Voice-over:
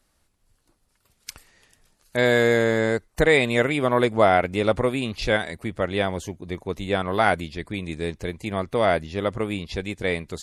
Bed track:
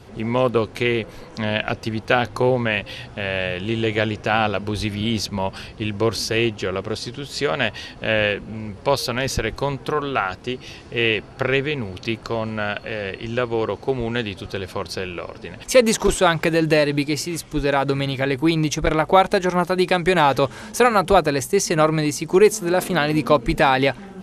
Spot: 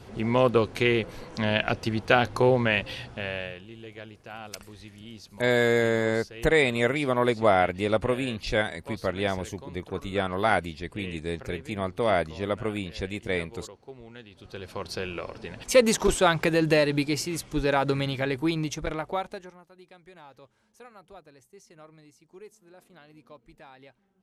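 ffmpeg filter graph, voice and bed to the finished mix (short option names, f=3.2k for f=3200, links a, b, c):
-filter_complex "[0:a]adelay=3250,volume=-3.5dB[a];[1:a]volume=15dB,afade=t=out:st=2.88:d=0.8:silence=0.105925,afade=t=in:st=14.3:d=0.77:silence=0.133352,afade=t=out:st=17.93:d=1.65:silence=0.0354813[b];[a][b]amix=inputs=2:normalize=0"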